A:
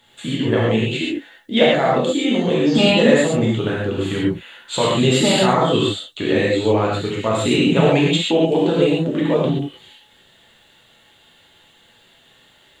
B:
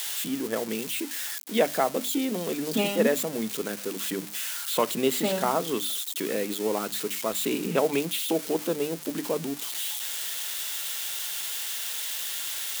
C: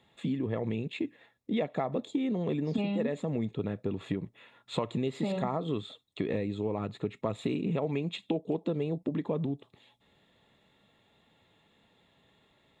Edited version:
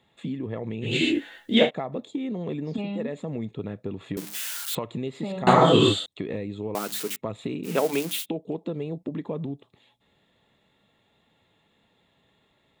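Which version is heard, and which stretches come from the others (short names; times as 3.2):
C
0.89–1.63 from A, crossfade 0.16 s
4.17–4.75 from B
5.47–6.06 from A
6.75–7.16 from B
7.66–8.23 from B, crossfade 0.06 s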